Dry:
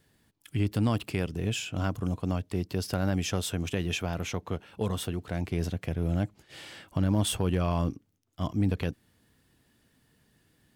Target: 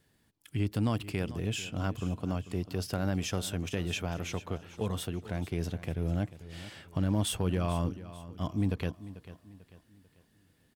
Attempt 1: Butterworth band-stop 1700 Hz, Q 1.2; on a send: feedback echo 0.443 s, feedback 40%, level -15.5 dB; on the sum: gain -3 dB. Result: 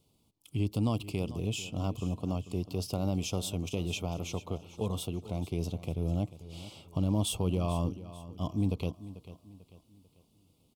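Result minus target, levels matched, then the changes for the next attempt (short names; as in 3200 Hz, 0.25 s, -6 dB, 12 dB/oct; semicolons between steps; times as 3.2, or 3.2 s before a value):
2000 Hz band -5.5 dB
remove: Butterworth band-stop 1700 Hz, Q 1.2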